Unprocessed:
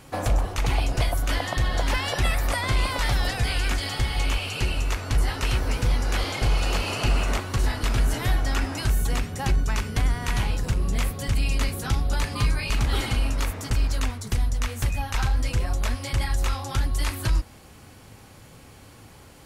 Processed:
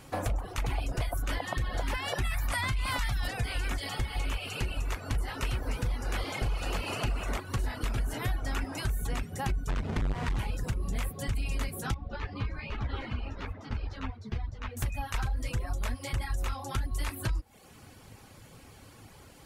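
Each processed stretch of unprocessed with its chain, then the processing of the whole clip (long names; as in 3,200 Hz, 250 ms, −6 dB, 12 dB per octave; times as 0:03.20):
0:02.24–0:03.28: parametric band 450 Hz −12 dB 1.3 octaves + envelope flattener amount 70%
0:09.69–0:10.39: each half-wave held at its own peak + downward compressor 3 to 1, threshold −20 dBFS + high-frequency loss of the air 77 metres
0:11.94–0:14.77: high-frequency loss of the air 260 metres + string-ensemble chorus
whole clip: reverb reduction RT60 0.62 s; dynamic equaliser 5,100 Hz, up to −5 dB, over −47 dBFS, Q 0.92; downward compressor 4 to 1, threshold −25 dBFS; level −2.5 dB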